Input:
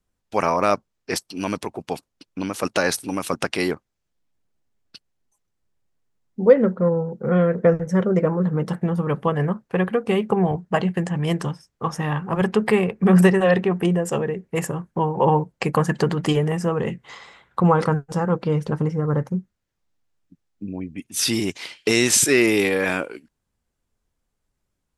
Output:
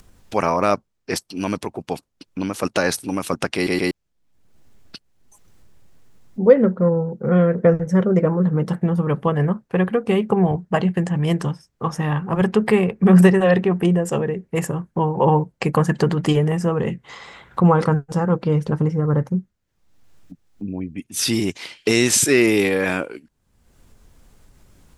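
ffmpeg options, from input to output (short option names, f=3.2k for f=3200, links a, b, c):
-filter_complex "[0:a]asplit=4[a][b][c][d];[a]atrim=end=3.672[e];[b]atrim=start=3.548:end=3.672[f];[c]atrim=start=3.548:end=3.672[g];[d]atrim=start=3.908[h];[e][f]acrossfade=d=0.004:c1=hsin:c2=hsin[i];[i][g]acrossfade=d=0.004:c1=hsin:c2=hsin[j];[j][h]acrossfade=d=0.004:c1=hsin:c2=hsin,lowshelf=f=340:g=4,acompressor=mode=upward:threshold=-31dB:ratio=2.5"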